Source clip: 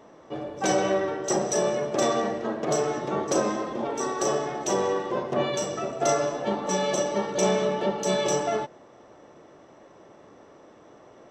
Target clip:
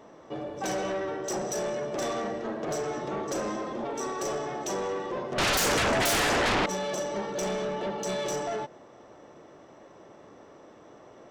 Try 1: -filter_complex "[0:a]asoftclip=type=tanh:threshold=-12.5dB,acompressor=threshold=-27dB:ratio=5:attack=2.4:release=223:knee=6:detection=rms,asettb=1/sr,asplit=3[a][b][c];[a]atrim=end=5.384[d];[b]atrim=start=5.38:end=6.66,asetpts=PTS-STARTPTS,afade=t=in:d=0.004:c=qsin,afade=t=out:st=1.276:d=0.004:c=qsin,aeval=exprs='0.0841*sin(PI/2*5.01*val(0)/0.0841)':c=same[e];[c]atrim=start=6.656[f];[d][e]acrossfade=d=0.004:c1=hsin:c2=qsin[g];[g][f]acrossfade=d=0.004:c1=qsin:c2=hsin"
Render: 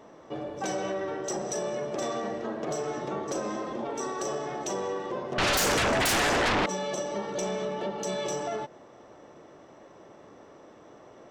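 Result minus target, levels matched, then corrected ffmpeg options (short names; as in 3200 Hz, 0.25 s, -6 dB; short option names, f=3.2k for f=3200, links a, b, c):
soft clip: distortion -14 dB
-filter_complex "[0:a]asoftclip=type=tanh:threshold=-23dB,acompressor=threshold=-27dB:ratio=5:attack=2.4:release=223:knee=6:detection=rms,asettb=1/sr,asplit=3[a][b][c];[a]atrim=end=5.384[d];[b]atrim=start=5.38:end=6.66,asetpts=PTS-STARTPTS,afade=t=in:d=0.004:c=qsin,afade=t=out:st=1.276:d=0.004:c=qsin,aeval=exprs='0.0841*sin(PI/2*5.01*val(0)/0.0841)':c=same[e];[c]atrim=start=6.656[f];[d][e]acrossfade=d=0.004:c1=hsin:c2=qsin[g];[g][f]acrossfade=d=0.004:c1=qsin:c2=hsin"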